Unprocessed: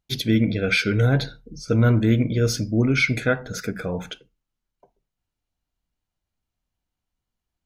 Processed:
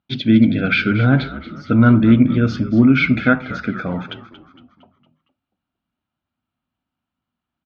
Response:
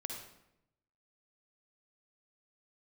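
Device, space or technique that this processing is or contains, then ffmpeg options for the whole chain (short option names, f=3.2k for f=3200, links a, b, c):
frequency-shifting delay pedal into a guitar cabinet: -filter_complex "[0:a]asplit=6[a][b][c][d][e][f];[b]adelay=230,afreqshift=-67,volume=-14.5dB[g];[c]adelay=460,afreqshift=-134,volume=-20.7dB[h];[d]adelay=690,afreqshift=-201,volume=-26.9dB[i];[e]adelay=920,afreqshift=-268,volume=-33.1dB[j];[f]adelay=1150,afreqshift=-335,volume=-39.3dB[k];[a][g][h][i][j][k]amix=inputs=6:normalize=0,highpass=110,equalizer=f=250:t=q:w=4:g=8,equalizer=f=450:t=q:w=4:g=-10,equalizer=f=1.3k:t=q:w=4:g=6,equalizer=f=2k:t=q:w=4:g=-5,lowpass=f=3.4k:w=0.5412,lowpass=f=3.4k:w=1.3066,volume=5dB"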